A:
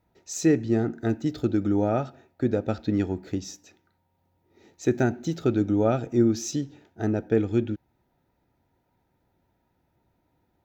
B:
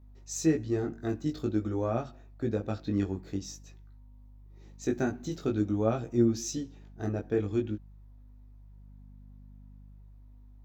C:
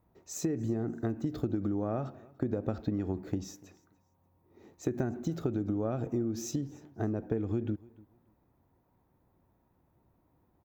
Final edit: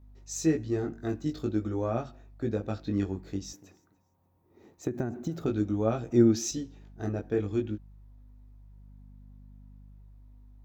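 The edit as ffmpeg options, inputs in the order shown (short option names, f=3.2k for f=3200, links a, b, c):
-filter_complex "[1:a]asplit=3[a][b][c];[a]atrim=end=3.532[d];[2:a]atrim=start=3.528:end=5.462[e];[b]atrim=start=5.458:end=6.112[f];[0:a]atrim=start=6.108:end=6.512[g];[c]atrim=start=6.508[h];[d][e]acrossfade=d=0.004:c1=hsin:c2=hsin[i];[i][f]acrossfade=d=0.004:c1=hsin:c2=hsin[j];[j][g]acrossfade=d=0.004:c1=hsin:c2=hsin[k];[k][h]acrossfade=d=0.004:c1=hsin:c2=hsin"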